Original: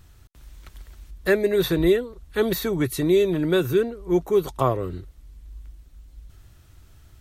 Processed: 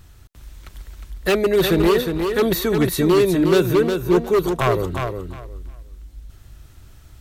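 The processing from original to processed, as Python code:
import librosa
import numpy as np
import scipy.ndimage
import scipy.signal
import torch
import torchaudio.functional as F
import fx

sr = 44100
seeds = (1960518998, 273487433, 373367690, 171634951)

y = 10.0 ** (-15.0 / 20.0) * (np.abs((x / 10.0 ** (-15.0 / 20.0) + 3.0) % 4.0 - 2.0) - 1.0)
y = fx.echo_feedback(y, sr, ms=359, feedback_pct=20, wet_db=-6.0)
y = F.gain(torch.from_numpy(y), 4.5).numpy()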